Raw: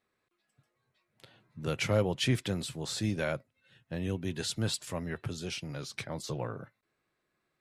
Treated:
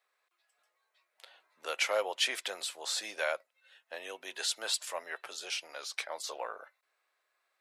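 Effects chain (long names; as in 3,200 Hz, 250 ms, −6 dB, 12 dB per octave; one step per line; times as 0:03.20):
high-pass filter 590 Hz 24 dB per octave
level +3 dB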